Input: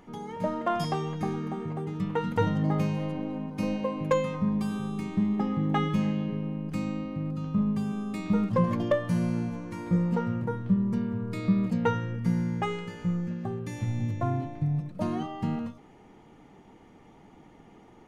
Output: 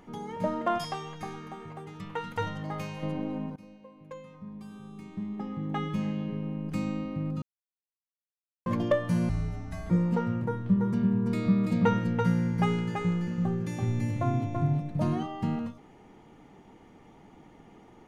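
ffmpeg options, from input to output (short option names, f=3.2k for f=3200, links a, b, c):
-filter_complex "[0:a]asettb=1/sr,asplit=3[a][b][c];[a]atrim=end=0.784[d];[b]atrim=start=0.78:end=3.03,asetpts=PTS-STARTPTS,afade=t=in:d=0.004:c=qsin,afade=t=out:st=2.246:d=0.004:c=qsin,equalizer=f=220:t=o:w=2.6:g=-12.5[e];[c]atrim=start=3.026[f];[d][e]acrossfade=d=0.004:c1=hsin:c2=qsin[g];[g][f]acrossfade=d=0.004:c1=qsin:c2=hsin,asettb=1/sr,asplit=3[h][i][j];[h]atrim=end=9.294[k];[i]atrim=start=9.29:end=9.9,asetpts=PTS-STARTPTS,afade=t=in:d=0.004:c=qsin,afade=t=out:st=0.606:d=0.004:c=qsin,afreqshift=-280[l];[j]atrim=start=9.896[m];[k][l]acrossfade=d=0.004:c1=hsin:c2=qsin[n];[n][m]acrossfade=d=0.004:c1=qsin:c2=hsin,asettb=1/sr,asplit=3[o][p][q];[o]atrim=end=10.464[r];[p]atrim=start=10.46:end=15.18,asetpts=PTS-STARTPTS,afade=t=in:d=0.004:c=qsin,afade=t=out:st=4.716:d=0.004:c=qsin,aecho=1:1:334:0.631,atrim=end_sample=208152[s];[q]atrim=start=15.176[t];[r][s]acrossfade=d=0.004:c1=hsin:c2=qsin[u];[u][t]acrossfade=d=0.004:c1=qsin:c2=hsin,asplit=4[v][w][x][y];[v]atrim=end=3.56,asetpts=PTS-STARTPTS,afade=t=out:st=3.556:d=0.004:c=hsin:silence=0.0794328[z];[w]atrim=start=3.56:end=7.42,asetpts=PTS-STARTPTS,afade=t=in:d=3.19:c=qua:silence=0.0794328,afade=t=out:st=3.856:d=0.004:c=hsin[aa];[x]atrim=start=7.42:end=8.66,asetpts=PTS-STARTPTS,volume=0[ab];[y]atrim=start=8.66,asetpts=PTS-STARTPTS,afade=t=in:d=0.004:c=hsin[ac];[z][aa][ab][ac]concat=n=4:v=0:a=1"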